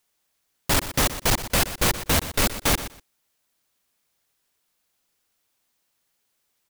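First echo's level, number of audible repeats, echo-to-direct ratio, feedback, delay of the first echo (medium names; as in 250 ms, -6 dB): -13.0 dB, 2, -13.0 dB, 17%, 122 ms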